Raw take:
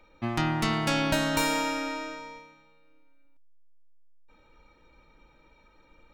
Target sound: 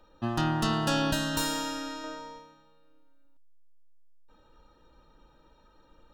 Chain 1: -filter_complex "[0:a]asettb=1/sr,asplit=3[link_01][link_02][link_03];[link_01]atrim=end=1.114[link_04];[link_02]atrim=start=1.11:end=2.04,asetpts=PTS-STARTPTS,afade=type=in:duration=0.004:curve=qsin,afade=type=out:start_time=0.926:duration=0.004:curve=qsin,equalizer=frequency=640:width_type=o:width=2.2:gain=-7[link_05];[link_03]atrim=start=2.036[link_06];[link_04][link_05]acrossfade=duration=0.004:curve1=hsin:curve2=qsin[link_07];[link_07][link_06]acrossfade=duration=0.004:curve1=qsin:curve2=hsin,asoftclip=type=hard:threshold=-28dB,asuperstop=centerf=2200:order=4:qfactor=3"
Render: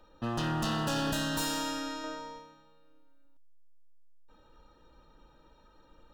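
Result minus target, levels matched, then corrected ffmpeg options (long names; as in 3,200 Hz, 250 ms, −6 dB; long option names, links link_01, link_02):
hard clipping: distortion +17 dB
-filter_complex "[0:a]asettb=1/sr,asplit=3[link_01][link_02][link_03];[link_01]atrim=end=1.114[link_04];[link_02]atrim=start=1.11:end=2.04,asetpts=PTS-STARTPTS,afade=type=in:duration=0.004:curve=qsin,afade=type=out:start_time=0.926:duration=0.004:curve=qsin,equalizer=frequency=640:width_type=o:width=2.2:gain=-7[link_05];[link_03]atrim=start=2.036[link_06];[link_04][link_05]acrossfade=duration=0.004:curve1=hsin:curve2=qsin[link_07];[link_07][link_06]acrossfade=duration=0.004:curve1=qsin:curve2=hsin,asoftclip=type=hard:threshold=-17.5dB,asuperstop=centerf=2200:order=4:qfactor=3"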